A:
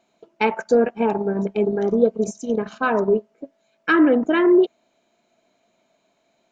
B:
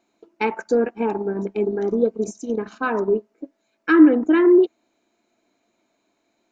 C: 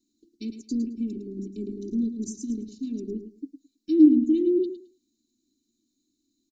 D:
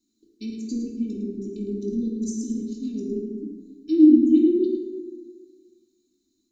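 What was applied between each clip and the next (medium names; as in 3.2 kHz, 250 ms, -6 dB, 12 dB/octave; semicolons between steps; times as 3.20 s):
graphic EQ with 31 bands 160 Hz -10 dB, 315 Hz +8 dB, 630 Hz -7 dB, 3.15 kHz -5 dB; trim -2 dB
elliptic band-stop 260–4500 Hz, stop band 60 dB; comb 3 ms, depth 80%; on a send: feedback delay 108 ms, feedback 19%, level -10 dB; on the sum: trim -2 dB
hum notches 60/120/180/240/300/360 Hz; plate-style reverb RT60 1.7 s, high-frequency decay 0.45×, DRR -1 dB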